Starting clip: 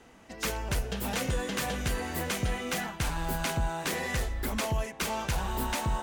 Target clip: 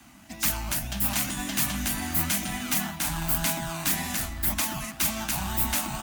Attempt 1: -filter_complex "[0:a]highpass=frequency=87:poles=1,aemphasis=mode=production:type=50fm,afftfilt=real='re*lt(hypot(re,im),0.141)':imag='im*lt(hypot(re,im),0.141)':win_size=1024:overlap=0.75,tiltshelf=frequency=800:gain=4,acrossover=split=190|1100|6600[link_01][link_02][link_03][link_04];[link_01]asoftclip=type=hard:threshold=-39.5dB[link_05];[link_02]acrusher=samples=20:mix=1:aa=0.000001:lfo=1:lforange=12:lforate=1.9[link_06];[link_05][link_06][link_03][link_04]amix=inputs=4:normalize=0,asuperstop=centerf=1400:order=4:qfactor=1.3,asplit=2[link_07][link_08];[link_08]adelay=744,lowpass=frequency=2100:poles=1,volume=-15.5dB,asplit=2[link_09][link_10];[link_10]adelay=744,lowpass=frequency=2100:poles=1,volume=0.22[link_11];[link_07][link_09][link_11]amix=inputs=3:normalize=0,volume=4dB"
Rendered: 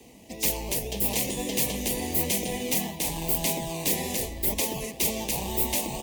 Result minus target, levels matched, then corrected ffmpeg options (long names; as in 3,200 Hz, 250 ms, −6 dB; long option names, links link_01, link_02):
hard clipping: distortion +18 dB; 500 Hz band +8.5 dB
-filter_complex "[0:a]highpass=frequency=87:poles=1,aemphasis=mode=production:type=50fm,afftfilt=real='re*lt(hypot(re,im),0.141)':imag='im*lt(hypot(re,im),0.141)':win_size=1024:overlap=0.75,tiltshelf=frequency=800:gain=4,acrossover=split=190|1100|6600[link_01][link_02][link_03][link_04];[link_01]asoftclip=type=hard:threshold=-32dB[link_05];[link_02]acrusher=samples=20:mix=1:aa=0.000001:lfo=1:lforange=12:lforate=1.9[link_06];[link_05][link_06][link_03][link_04]amix=inputs=4:normalize=0,asuperstop=centerf=450:order=4:qfactor=1.3,asplit=2[link_07][link_08];[link_08]adelay=744,lowpass=frequency=2100:poles=1,volume=-15.5dB,asplit=2[link_09][link_10];[link_10]adelay=744,lowpass=frequency=2100:poles=1,volume=0.22[link_11];[link_07][link_09][link_11]amix=inputs=3:normalize=0,volume=4dB"